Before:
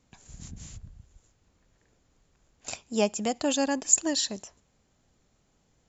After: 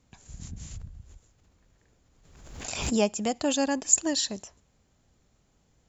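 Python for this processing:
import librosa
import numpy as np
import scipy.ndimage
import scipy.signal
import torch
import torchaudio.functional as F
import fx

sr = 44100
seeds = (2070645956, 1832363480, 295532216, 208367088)

y = fx.peak_eq(x, sr, hz=62.0, db=4.5, octaves=2.1)
y = fx.pre_swell(y, sr, db_per_s=52.0, at=(0.71, 3.02))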